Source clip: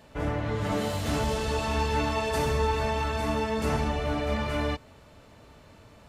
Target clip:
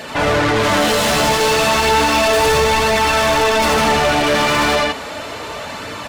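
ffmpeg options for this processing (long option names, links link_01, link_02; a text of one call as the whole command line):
ffmpeg -i in.wav -filter_complex "[0:a]aecho=1:1:81.63|157.4:0.794|0.447,asplit=2[link_01][link_02];[link_02]highpass=frequency=720:poles=1,volume=31dB,asoftclip=type=tanh:threshold=-11.5dB[link_03];[link_01][link_03]amix=inputs=2:normalize=0,lowpass=frequency=7800:poles=1,volume=-6dB,flanger=delay=0.4:depth=6.2:regen=-45:speed=0.34:shape=triangular,volume=7dB" out.wav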